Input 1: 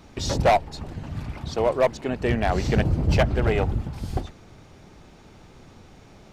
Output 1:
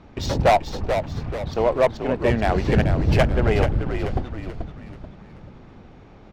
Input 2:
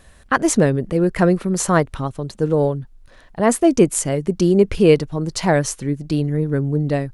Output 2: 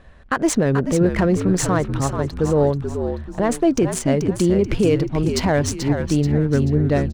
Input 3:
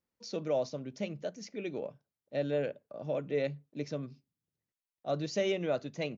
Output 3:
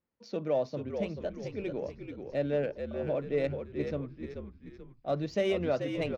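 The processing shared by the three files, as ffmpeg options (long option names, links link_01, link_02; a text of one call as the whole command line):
ffmpeg -i in.wav -filter_complex "[0:a]alimiter=limit=-11dB:level=0:latency=1:release=69,adynamicsmooth=sensitivity=3.5:basefreq=2900,asplit=6[link_01][link_02][link_03][link_04][link_05][link_06];[link_02]adelay=434,afreqshift=-62,volume=-7dB[link_07];[link_03]adelay=868,afreqshift=-124,volume=-14.5dB[link_08];[link_04]adelay=1302,afreqshift=-186,volume=-22.1dB[link_09];[link_05]adelay=1736,afreqshift=-248,volume=-29.6dB[link_10];[link_06]adelay=2170,afreqshift=-310,volume=-37.1dB[link_11];[link_01][link_07][link_08][link_09][link_10][link_11]amix=inputs=6:normalize=0,volume=2dB" out.wav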